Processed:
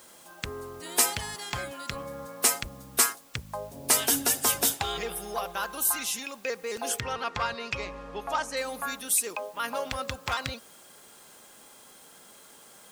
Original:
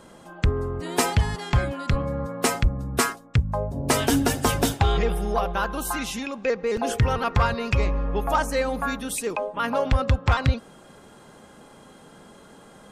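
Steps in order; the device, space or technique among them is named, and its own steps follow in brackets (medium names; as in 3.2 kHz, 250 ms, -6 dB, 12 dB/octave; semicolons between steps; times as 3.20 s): turntable without a phono preamp (RIAA curve recording; white noise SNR 26 dB); 7.00–8.57 s: low-pass 5.2 kHz 12 dB/octave; trim -6.5 dB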